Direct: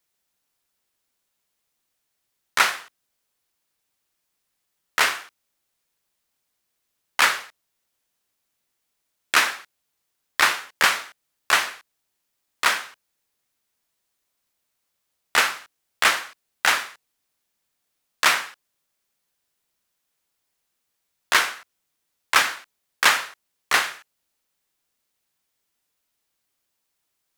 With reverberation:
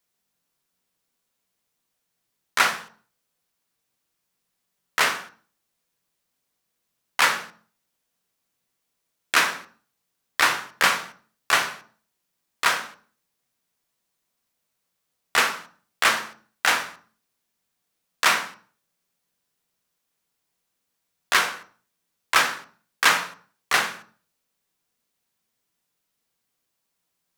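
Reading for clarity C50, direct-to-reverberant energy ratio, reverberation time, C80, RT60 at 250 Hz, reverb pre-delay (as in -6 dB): 13.5 dB, 5.5 dB, 0.45 s, 18.0 dB, 0.70 s, 3 ms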